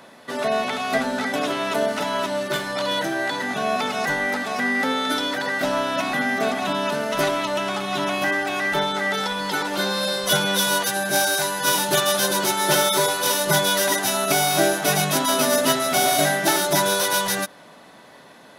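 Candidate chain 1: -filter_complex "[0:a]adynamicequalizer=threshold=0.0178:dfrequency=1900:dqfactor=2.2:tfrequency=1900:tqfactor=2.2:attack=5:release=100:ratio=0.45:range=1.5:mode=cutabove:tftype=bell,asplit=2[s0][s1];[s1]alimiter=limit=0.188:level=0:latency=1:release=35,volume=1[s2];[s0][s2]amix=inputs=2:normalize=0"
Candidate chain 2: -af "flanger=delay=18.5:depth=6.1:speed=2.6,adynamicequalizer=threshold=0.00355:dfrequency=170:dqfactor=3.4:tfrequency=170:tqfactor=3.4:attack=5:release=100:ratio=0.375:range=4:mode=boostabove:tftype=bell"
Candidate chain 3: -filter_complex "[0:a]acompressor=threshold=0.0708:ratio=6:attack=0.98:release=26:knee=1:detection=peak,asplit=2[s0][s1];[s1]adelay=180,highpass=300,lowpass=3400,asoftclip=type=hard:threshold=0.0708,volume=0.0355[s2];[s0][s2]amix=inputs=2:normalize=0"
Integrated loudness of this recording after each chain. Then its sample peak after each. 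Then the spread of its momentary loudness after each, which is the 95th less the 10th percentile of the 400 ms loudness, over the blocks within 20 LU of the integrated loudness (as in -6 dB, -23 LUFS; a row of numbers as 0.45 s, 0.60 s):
-16.5 LUFS, -24.0 LUFS, -26.0 LUFS; -2.0 dBFS, -6.0 dBFS, -13.5 dBFS; 4 LU, 6 LU, 2 LU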